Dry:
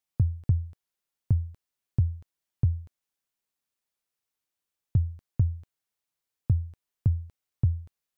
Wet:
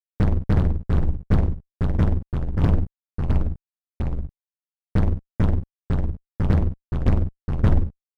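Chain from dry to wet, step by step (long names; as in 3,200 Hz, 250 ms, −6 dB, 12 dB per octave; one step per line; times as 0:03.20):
sub-octave generator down 2 octaves, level −1 dB
inverse Chebyshev low-pass filter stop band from 650 Hz, stop band 80 dB
fuzz pedal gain 36 dB, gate −42 dBFS
delay with pitch and tempo change per echo 340 ms, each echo −2 semitones, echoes 2
level −1.5 dB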